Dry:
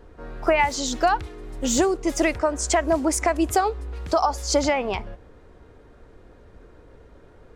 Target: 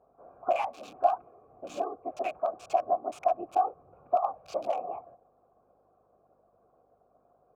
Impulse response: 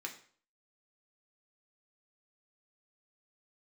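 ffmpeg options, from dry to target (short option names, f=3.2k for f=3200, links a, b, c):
-filter_complex "[0:a]afftfilt=real='hypot(re,im)*cos(2*PI*random(0))':imag='hypot(re,im)*sin(2*PI*random(1))':win_size=512:overlap=0.75,acrossover=split=1400[a][b];[b]acrusher=bits=4:mix=0:aa=0.000001[c];[a][c]amix=inputs=2:normalize=0,aeval=exprs='val(0)+0.00251*(sin(2*PI*50*n/s)+sin(2*PI*2*50*n/s)/2+sin(2*PI*3*50*n/s)/3+sin(2*PI*4*50*n/s)/4+sin(2*PI*5*50*n/s)/5)':c=same,asplit=3[d][e][f];[d]bandpass=f=730:t=q:w=8,volume=0dB[g];[e]bandpass=f=1.09k:t=q:w=8,volume=-6dB[h];[f]bandpass=f=2.44k:t=q:w=8,volume=-9dB[i];[g][h][i]amix=inputs=3:normalize=0,volume=5.5dB"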